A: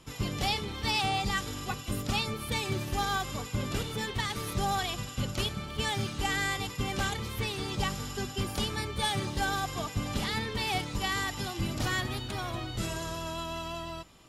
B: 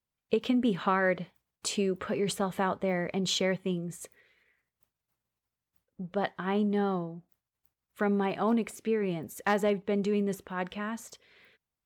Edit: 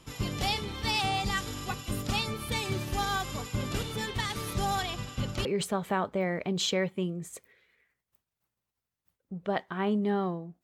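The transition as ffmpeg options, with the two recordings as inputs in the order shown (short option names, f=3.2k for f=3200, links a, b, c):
-filter_complex "[0:a]asettb=1/sr,asplit=3[a][b][c];[a]atrim=end=4.824[d];[b]atrim=start=4.82:end=5.45,asetpts=PTS-STARTPTS,afade=t=in:d=0.004:c=qsin,afade=t=out:st=0.626:d=0.004:c=qsin,highshelf=f=6.2k:g=-8[e];[c]atrim=start=5.446[f];[d][e]acrossfade=d=0.004:c1=hsin:c2=qsin[g];[g][f]acrossfade=d=0.004:c1=qsin:c2=hsin,apad=whole_dur=10.63,atrim=end=10.63,atrim=end=5.452[h];[1:a]atrim=start=2.128:end=7.31[i];[h][i]acrossfade=d=0.004:c1=hsin:c2=hsin"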